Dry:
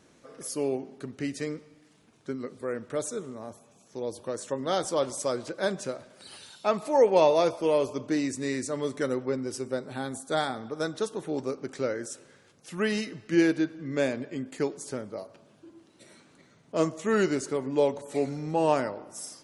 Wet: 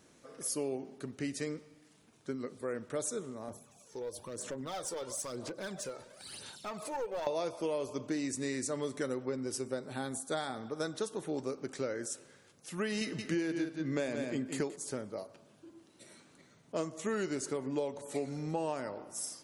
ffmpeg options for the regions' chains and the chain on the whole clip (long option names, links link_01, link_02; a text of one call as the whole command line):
ffmpeg -i in.wav -filter_complex "[0:a]asettb=1/sr,asplit=3[link_01][link_02][link_03];[link_01]atrim=end=3.484[link_04];[link_02]atrim=start=3.48:end=7.27,asetpts=PTS-STARTPTS,afade=type=in:duration=0.004:curve=qsin,afade=type=out:start_time=3.786:duration=0.004:curve=qsin,aphaser=in_gain=1:out_gain=1:delay=2.3:decay=0.57:speed=1:type=sinusoidal,acompressor=threshold=-36dB:ratio=2.5:attack=3.2:release=140:knee=1:detection=peak,aeval=exprs='clip(val(0),-1,0.0251)':channel_layout=same[link_05];[link_03]atrim=start=7.266[link_06];[link_04][link_05]acrossfade=duration=0.004:curve1=hsin:curve2=qsin[link_07];[link_07][link_06]acrossfade=duration=0.004:curve1=qsin:curve2=hsin,asettb=1/sr,asplit=3[link_08][link_09][link_10];[link_08]atrim=end=13.014[link_11];[link_09]atrim=start=13.01:end=14.76,asetpts=PTS-STARTPTS,afade=type=in:duration=0.004:curve=qsin,afade=type=out:start_time=1.746:duration=0.004:curve=qsin,acontrast=28,aecho=1:1:175:0.376,atrim=end_sample=77175[link_12];[link_10]atrim=start=14.756[link_13];[link_11][link_12]acrossfade=duration=0.004:curve1=hsin:curve2=qsin[link_14];[link_14][link_13]acrossfade=duration=0.004:curve1=qsin:curve2=hsin,acompressor=threshold=-27dB:ratio=10,highshelf=frequency=7600:gain=7.5,volume=-3.5dB" out.wav